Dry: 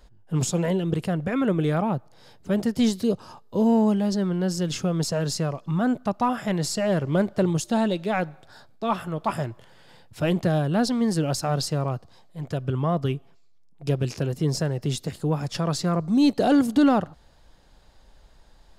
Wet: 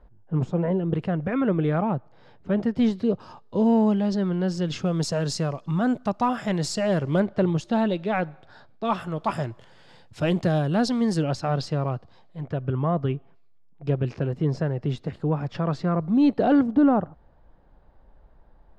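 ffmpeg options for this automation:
ffmpeg -i in.wav -af "asetnsamples=nb_out_samples=441:pad=0,asendcmd='0.93 lowpass f 2400;3.2 lowpass f 4200;4.86 lowpass f 7600;7.2 lowpass f 3400;8.85 lowpass f 7200;11.23 lowpass f 3600;12.41 lowpass f 2200;16.63 lowpass f 1200',lowpass=1300" out.wav

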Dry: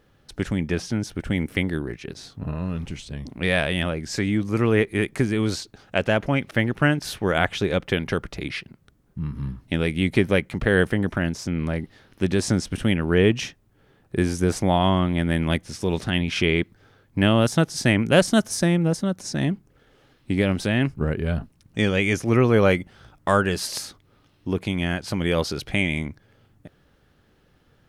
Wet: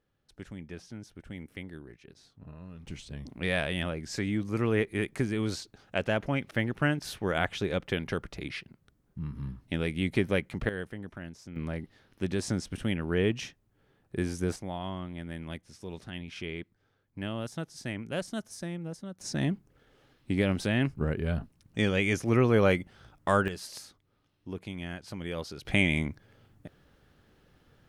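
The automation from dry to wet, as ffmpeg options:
ffmpeg -i in.wav -af "asetnsamples=nb_out_samples=441:pad=0,asendcmd='2.87 volume volume -7.5dB;10.69 volume volume -18dB;11.56 volume volume -9dB;14.56 volume volume -17dB;19.21 volume volume -5.5dB;23.48 volume volume -13.5dB;25.65 volume volume -2dB',volume=-18dB" out.wav

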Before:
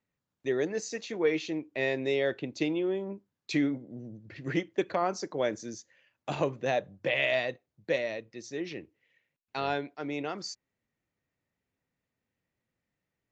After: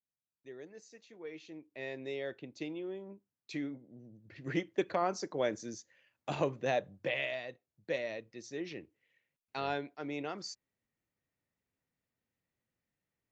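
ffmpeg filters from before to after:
ffmpeg -i in.wav -af "volume=5dB,afade=type=in:start_time=1.23:duration=0.8:silence=0.375837,afade=type=in:start_time=4.13:duration=0.53:silence=0.398107,afade=type=out:start_time=6.94:duration=0.44:silence=0.334965,afade=type=in:start_time=7.38:duration=0.81:silence=0.398107" out.wav

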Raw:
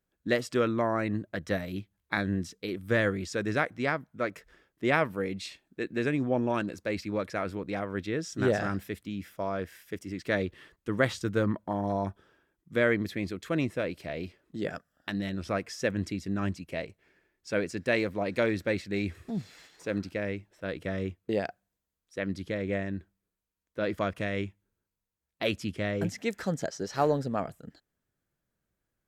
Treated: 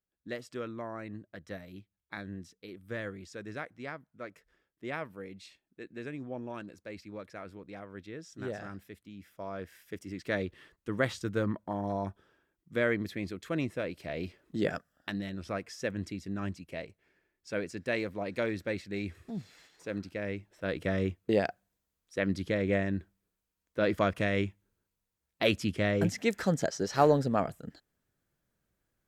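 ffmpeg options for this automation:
ffmpeg -i in.wav -af "volume=11dB,afade=type=in:start_time=9.14:duration=0.87:silence=0.375837,afade=type=in:start_time=13.96:duration=0.63:silence=0.446684,afade=type=out:start_time=14.59:duration=0.67:silence=0.375837,afade=type=in:start_time=20.12:duration=0.71:silence=0.421697" out.wav

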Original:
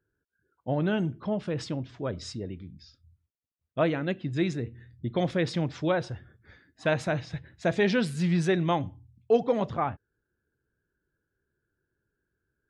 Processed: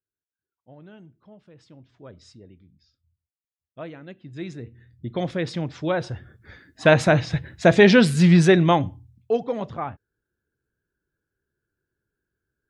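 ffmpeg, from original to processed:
ffmpeg -i in.wav -af "volume=11dB,afade=type=in:start_time=1.62:duration=0.42:silence=0.398107,afade=type=in:start_time=4.18:duration=0.99:silence=0.251189,afade=type=in:start_time=5.81:duration=1.17:silence=0.298538,afade=type=out:start_time=8.32:duration=1.08:silence=0.237137" out.wav

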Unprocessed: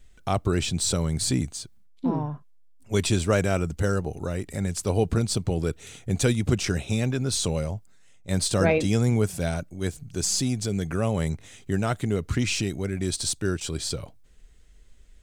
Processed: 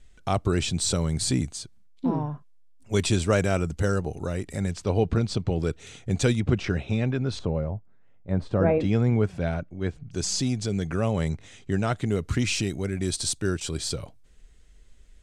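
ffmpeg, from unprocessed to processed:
ffmpeg -i in.wav -af "asetnsamples=nb_out_samples=441:pad=0,asendcmd='4.71 lowpass f 4200;5.6 lowpass f 6900;6.4 lowpass f 2900;7.39 lowpass f 1200;8.8 lowpass f 2500;10.11 lowpass f 6600;12.07 lowpass f 12000',lowpass=10000" out.wav

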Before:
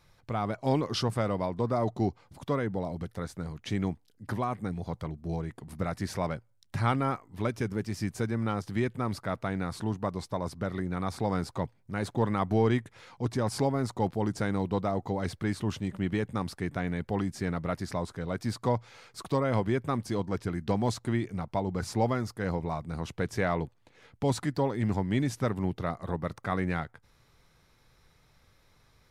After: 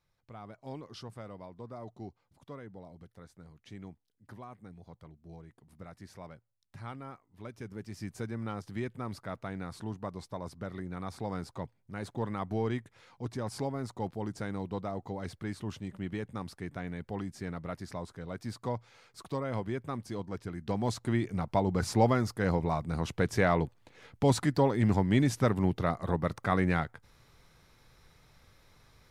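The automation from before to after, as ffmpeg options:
ffmpeg -i in.wav -af "volume=2.5dB,afade=type=in:start_time=7.37:duration=0.81:silence=0.354813,afade=type=in:start_time=20.55:duration=1.02:silence=0.334965" out.wav

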